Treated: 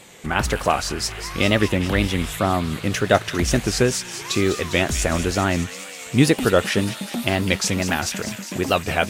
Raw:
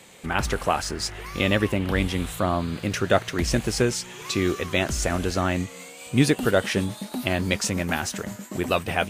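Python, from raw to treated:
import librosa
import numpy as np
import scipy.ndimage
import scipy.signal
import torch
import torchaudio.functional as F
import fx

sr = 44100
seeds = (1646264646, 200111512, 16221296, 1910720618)

y = fx.wow_flutter(x, sr, seeds[0], rate_hz=2.1, depth_cents=110.0)
y = fx.echo_wet_highpass(y, sr, ms=202, feedback_pct=76, hz=2200.0, wet_db=-9.5)
y = y * librosa.db_to_amplitude(3.5)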